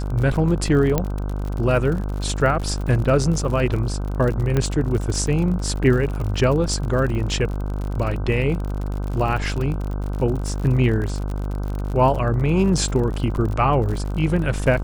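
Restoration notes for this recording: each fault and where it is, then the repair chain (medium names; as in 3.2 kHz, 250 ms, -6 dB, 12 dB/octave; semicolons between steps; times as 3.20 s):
buzz 50 Hz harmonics 31 -25 dBFS
crackle 52 per s -27 dBFS
0.98 s: pop -6 dBFS
4.57 s: pop -9 dBFS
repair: de-click; de-hum 50 Hz, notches 31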